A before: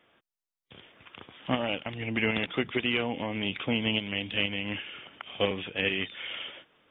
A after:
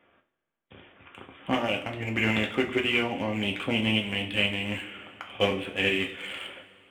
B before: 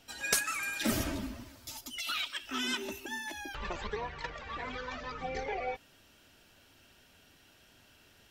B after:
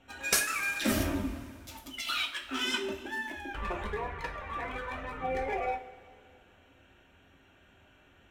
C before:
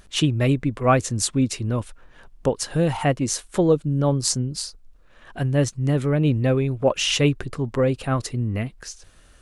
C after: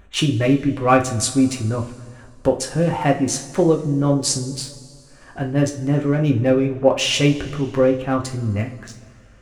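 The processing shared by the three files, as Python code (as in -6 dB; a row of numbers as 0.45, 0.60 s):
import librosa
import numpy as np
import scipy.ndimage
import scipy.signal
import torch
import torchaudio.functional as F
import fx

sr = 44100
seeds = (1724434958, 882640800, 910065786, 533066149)

y = fx.wiener(x, sr, points=9)
y = fx.rev_double_slope(y, sr, seeds[0], early_s=0.33, late_s=2.3, knee_db=-18, drr_db=0.5)
y = F.gain(torch.from_numpy(y), 1.0).numpy()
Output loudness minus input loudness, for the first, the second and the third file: +3.0, +3.0, +3.0 LU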